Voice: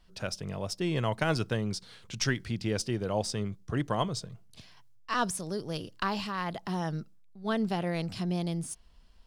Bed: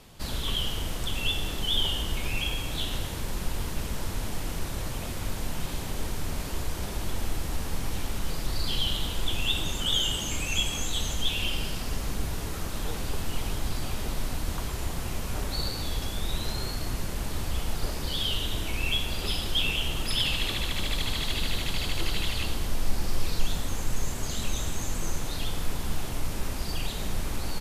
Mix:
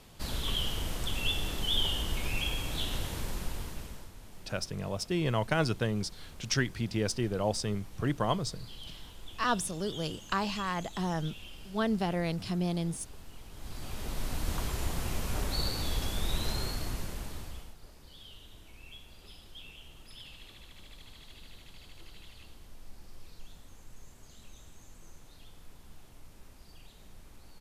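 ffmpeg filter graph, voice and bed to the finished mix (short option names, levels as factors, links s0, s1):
-filter_complex "[0:a]adelay=4300,volume=1[s0];[1:a]volume=5.01,afade=t=out:st=3.19:d=0.92:silence=0.16788,afade=t=in:st=13.51:d=1.05:silence=0.141254,afade=t=out:st=16.53:d=1.22:silence=0.0891251[s1];[s0][s1]amix=inputs=2:normalize=0"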